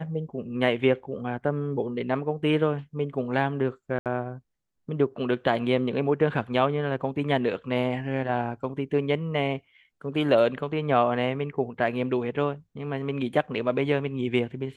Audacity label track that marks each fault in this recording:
3.990000	4.060000	drop-out 68 ms

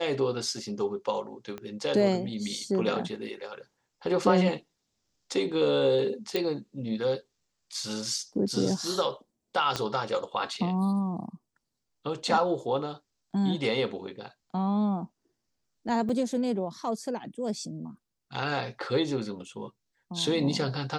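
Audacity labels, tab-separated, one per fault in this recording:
1.580000	1.580000	click −24 dBFS
6.360000	6.360000	click
9.760000	9.760000	click −14 dBFS
16.090000	16.090000	drop-out 4.5 ms

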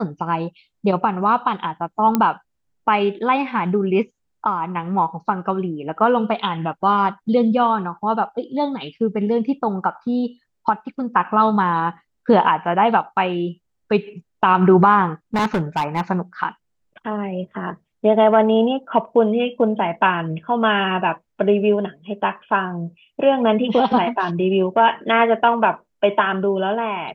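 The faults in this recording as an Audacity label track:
2.150000	2.150000	click −5 dBFS
15.340000	16.010000	clipping −15.5 dBFS

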